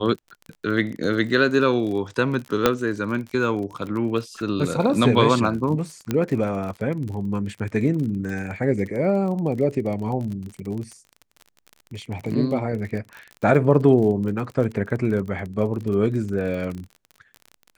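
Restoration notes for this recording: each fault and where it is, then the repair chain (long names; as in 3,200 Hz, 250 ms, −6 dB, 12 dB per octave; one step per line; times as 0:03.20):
surface crackle 34 per second −30 dBFS
0:02.66: click −2 dBFS
0:06.11: click −10 dBFS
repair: click removal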